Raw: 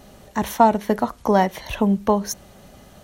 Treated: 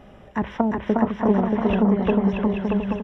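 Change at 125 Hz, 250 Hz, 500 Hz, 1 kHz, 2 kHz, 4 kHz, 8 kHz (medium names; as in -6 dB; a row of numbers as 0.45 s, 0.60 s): +3.0 dB, +3.0 dB, -1.5 dB, -7.5 dB, -1.5 dB, no reading, under -25 dB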